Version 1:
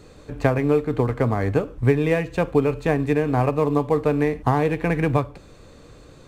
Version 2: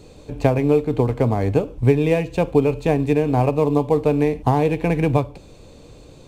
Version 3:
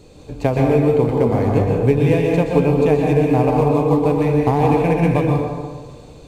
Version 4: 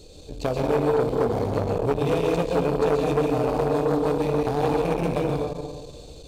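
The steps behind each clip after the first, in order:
flat-topped bell 1,500 Hz −8.5 dB 1 octave; level +2.5 dB
dense smooth reverb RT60 1.5 s, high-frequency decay 0.55×, pre-delay 110 ms, DRR −1 dB; level −1 dB
in parallel at −2 dB: brickwall limiter −11 dBFS, peak gain reduction 9 dB; on the sum: octave-band graphic EQ 125/250/1,000/2,000/4,000 Hz −9/−7/−10/−10/+5 dB; saturating transformer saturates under 700 Hz; level −2 dB

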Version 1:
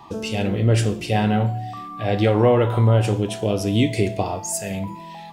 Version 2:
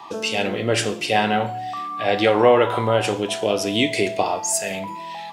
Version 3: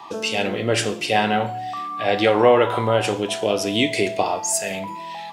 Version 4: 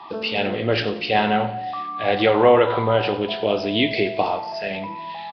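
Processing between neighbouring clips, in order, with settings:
meter weighting curve A; level +5.5 dB
no processing that can be heard
repeating echo 90 ms, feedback 50%, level −16 dB; Nellymoser 22 kbit/s 11,025 Hz

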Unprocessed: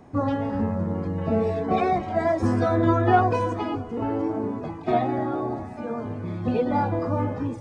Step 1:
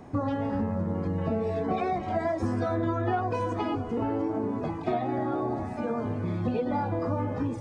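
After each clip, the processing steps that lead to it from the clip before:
downward compressor 5 to 1, threshold −28 dBFS, peak gain reduction 13.5 dB
level +2.5 dB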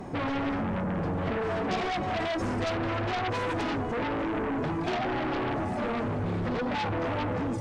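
flanger 1.2 Hz, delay 5 ms, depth 2.5 ms, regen +63%
in parallel at −12 dB: sine wavefolder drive 17 dB, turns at −19 dBFS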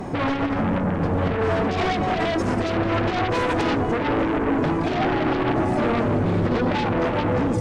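brickwall limiter −27.5 dBFS, peak gain reduction 8 dB
bucket-brigade delay 282 ms, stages 1,024, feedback 79%, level −7 dB
level +8.5 dB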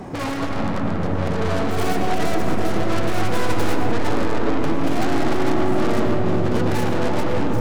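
stylus tracing distortion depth 0.46 ms
comb and all-pass reverb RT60 3.8 s, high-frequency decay 0.3×, pre-delay 70 ms, DRR 3 dB
level −3 dB

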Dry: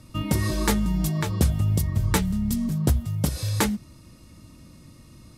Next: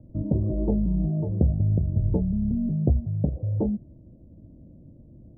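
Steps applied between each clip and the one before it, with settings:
Butterworth low-pass 690 Hz 48 dB per octave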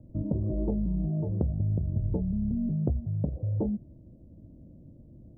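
downward compressor 3 to 1, threshold −23 dBFS, peak gain reduction 6.5 dB
level −2 dB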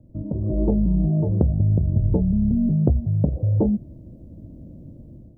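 automatic gain control gain up to 9.5 dB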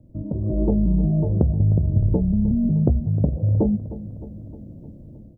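repeating echo 308 ms, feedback 59%, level −15 dB

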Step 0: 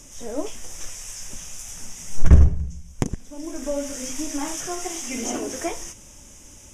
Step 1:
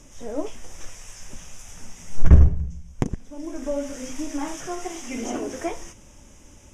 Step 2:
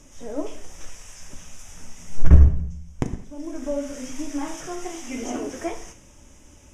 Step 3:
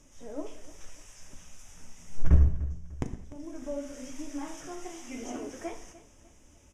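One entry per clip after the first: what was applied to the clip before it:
high-shelf EQ 4,200 Hz −11.5 dB
reverb whose tail is shaped and stops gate 230 ms falling, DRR 8 dB; level −1.5 dB
repeating echo 298 ms, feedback 39%, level −18 dB; level −8.5 dB

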